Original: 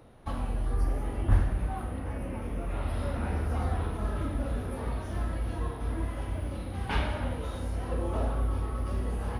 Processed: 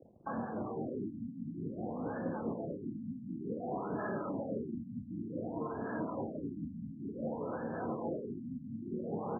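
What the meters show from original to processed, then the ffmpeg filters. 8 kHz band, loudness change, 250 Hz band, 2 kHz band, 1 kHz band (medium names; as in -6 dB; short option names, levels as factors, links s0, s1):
under -30 dB, -7.0 dB, 0.0 dB, -8.0 dB, -4.5 dB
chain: -filter_complex "[0:a]afftfilt=real='re*lt(hypot(re,im),0.141)':imag='im*lt(hypot(re,im),0.141)':win_size=1024:overlap=0.75,anlmdn=0.00631,highshelf=f=2100:g=-8.5,alimiter=level_in=2.99:limit=0.0631:level=0:latency=1:release=124,volume=0.335,acrossover=split=730[s0][s1];[s0]aeval=exprs='val(0)*(1-0.5/2+0.5/2*cos(2*PI*4.8*n/s))':c=same[s2];[s1]aeval=exprs='val(0)*(1-0.5/2-0.5/2*cos(2*PI*4.8*n/s))':c=same[s3];[s2][s3]amix=inputs=2:normalize=0,afreqshift=-15,aexciter=amount=9.6:drive=8.9:freq=2100,highpass=170,lowpass=3200,asplit=2[s4][s5];[s5]aecho=0:1:453:0.112[s6];[s4][s6]amix=inputs=2:normalize=0,afftfilt=real='re*lt(b*sr/1024,270*pow(1800/270,0.5+0.5*sin(2*PI*0.55*pts/sr)))':imag='im*lt(b*sr/1024,270*pow(1800/270,0.5+0.5*sin(2*PI*0.55*pts/sr)))':win_size=1024:overlap=0.75,volume=2.66"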